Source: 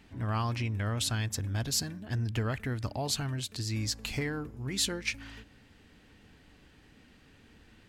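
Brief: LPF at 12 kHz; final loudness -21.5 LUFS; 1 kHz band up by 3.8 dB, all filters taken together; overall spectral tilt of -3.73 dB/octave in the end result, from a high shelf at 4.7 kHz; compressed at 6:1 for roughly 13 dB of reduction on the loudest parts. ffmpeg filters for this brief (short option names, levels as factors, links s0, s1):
-af "lowpass=12000,equalizer=f=1000:t=o:g=4.5,highshelf=f=4700:g=6.5,acompressor=threshold=0.0141:ratio=6,volume=8.41"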